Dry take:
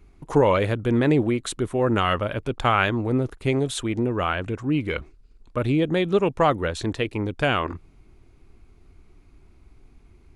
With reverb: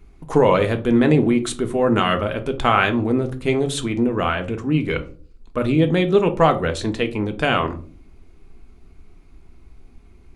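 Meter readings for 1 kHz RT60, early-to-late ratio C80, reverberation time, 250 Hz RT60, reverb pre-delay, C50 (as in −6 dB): 0.35 s, 20.5 dB, 0.45 s, 0.60 s, 3 ms, 15.0 dB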